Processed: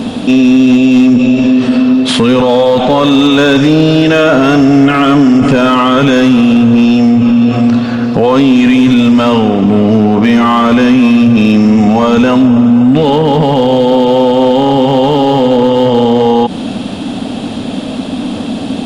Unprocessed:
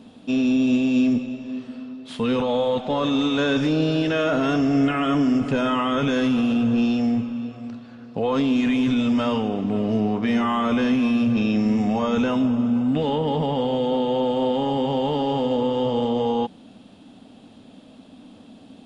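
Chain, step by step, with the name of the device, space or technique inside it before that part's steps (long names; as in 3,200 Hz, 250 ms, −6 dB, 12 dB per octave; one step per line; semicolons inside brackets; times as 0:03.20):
loud club master (downward compressor 2 to 1, threshold −25 dBFS, peak gain reduction 5.5 dB; hard clipping −20 dBFS, distortion −24 dB; boost into a limiter +29.5 dB)
level −1 dB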